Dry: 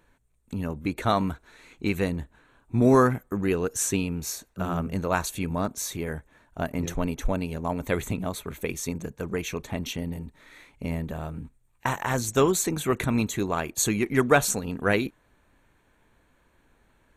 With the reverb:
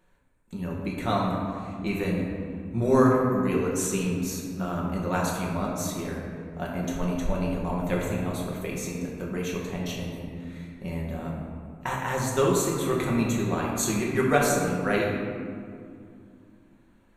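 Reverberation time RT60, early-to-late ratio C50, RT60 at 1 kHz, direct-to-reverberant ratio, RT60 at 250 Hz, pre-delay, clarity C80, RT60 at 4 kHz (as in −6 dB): 2.3 s, 1.0 dB, 2.1 s, −3.5 dB, 3.5 s, 5 ms, 2.5 dB, 1.1 s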